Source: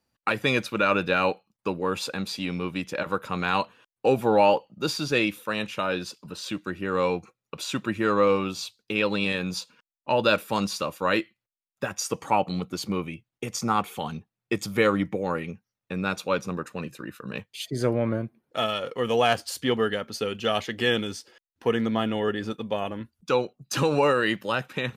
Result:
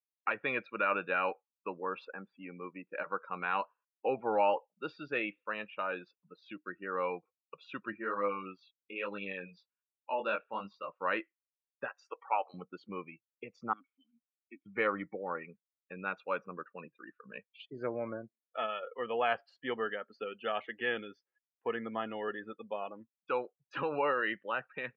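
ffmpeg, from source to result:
ffmpeg -i in.wav -filter_complex "[0:a]asettb=1/sr,asplit=3[link_01][link_02][link_03];[link_01]atrim=end=2.054[link_04];[link_02]atrim=start=2.05:end=2.92,asetpts=PTS-STARTPTS,afade=type=in:duration=0.004:curve=qsin,afade=type=out:start_time=0.866:duration=0.004:curve=qsin,highpass=150,lowpass=2000[link_05];[link_03]atrim=start=2.916[link_06];[link_04][link_05]acrossfade=duration=0.004:curve1=hsin:curve2=qsin[link_07];[link_07][link_06]acrossfade=duration=0.004:curve1=qsin:curve2=hsin,asplit=3[link_08][link_09][link_10];[link_08]afade=type=out:start_time=7.92:duration=0.02[link_11];[link_09]flanger=delay=19.5:depth=4.4:speed=1.2,afade=type=in:start_time=7.92:duration=0.02,afade=type=out:start_time=10.88:duration=0.02[link_12];[link_10]afade=type=in:start_time=10.88:duration=0.02[link_13];[link_11][link_12][link_13]amix=inputs=3:normalize=0,asettb=1/sr,asplit=3[link_14][link_15][link_16];[link_14]atrim=end=11.884[link_17];[link_15]atrim=start=11.88:end=12.54,asetpts=PTS-STARTPTS,afade=type=in:duration=0.004:curve=qsin,afade=type=out:start_time=0.656:duration=0.004:curve=qsin,highpass=490[link_18];[link_16]atrim=start=12.536[link_19];[link_17][link_18]acrossfade=duration=0.004:curve1=hsin:curve2=qsin[link_20];[link_20][link_19]acrossfade=duration=0.004:curve1=qsin:curve2=hsin,asettb=1/sr,asplit=3[link_21][link_22][link_23];[link_21]atrim=end=13.734[link_24];[link_22]atrim=start=13.73:end=14.66,asetpts=PTS-STARTPTS,afade=type=in:duration=0.004:curve=qsin,afade=type=out:start_time=0.926:duration=0.004:curve=qsin,asplit=3[link_25][link_26][link_27];[link_25]bandpass=frequency=270:width_type=q:width=8,volume=0dB[link_28];[link_26]bandpass=frequency=2290:width_type=q:width=8,volume=-6dB[link_29];[link_27]bandpass=frequency=3010:width_type=q:width=8,volume=-9dB[link_30];[link_28][link_29][link_30]amix=inputs=3:normalize=0[link_31];[link_23]atrim=start=14.656[link_32];[link_24][link_31]acrossfade=duration=0.004:curve1=hsin:curve2=qsin[link_33];[link_33][link_32]acrossfade=duration=0.004:curve1=qsin:curve2=hsin,highpass=frequency=790:poles=1,afftdn=noise_reduction=30:noise_floor=-38,lowpass=frequency=2400:width=0.5412,lowpass=frequency=2400:width=1.3066,volume=-5dB" out.wav

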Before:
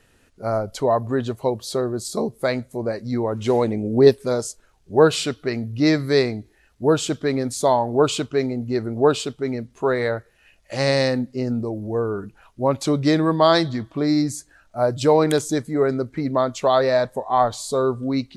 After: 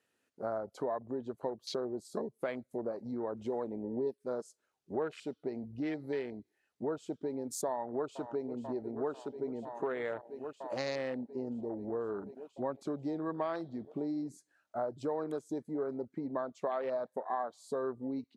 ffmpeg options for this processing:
ffmpeg -i in.wav -filter_complex "[0:a]asplit=2[link_01][link_02];[link_02]afade=type=in:start_time=7.66:duration=0.01,afade=type=out:start_time=8.48:duration=0.01,aecho=0:1:490|980|1470|1960|2450|2940|3430|3920|4410|4900|5390|5880:0.149624|0.12718|0.108103|0.0918876|0.0781044|0.0663888|0.0564305|0.0479659|0.040771|0.0346554|0.0294571|0.0250385[link_03];[link_01][link_03]amix=inputs=2:normalize=0,acompressor=threshold=-31dB:ratio=5,highpass=230,afwtdn=0.01,volume=-2.5dB" out.wav

